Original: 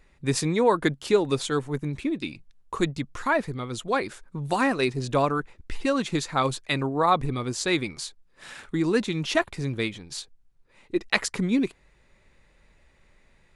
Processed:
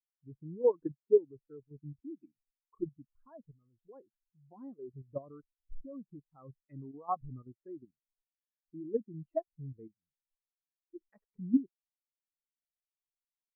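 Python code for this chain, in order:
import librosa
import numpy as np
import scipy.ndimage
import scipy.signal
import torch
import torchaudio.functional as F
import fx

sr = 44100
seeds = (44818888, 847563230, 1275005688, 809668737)

y = fx.env_lowpass_down(x, sr, base_hz=1200.0, full_db=-22.5)
y = fx.dynamic_eq(y, sr, hz=1600.0, q=1.5, threshold_db=-38.0, ratio=4.0, max_db=3)
y = fx.level_steps(y, sr, step_db=10)
y = fx.air_absorb(y, sr, metres=480.0)
y = fx.spectral_expand(y, sr, expansion=2.5)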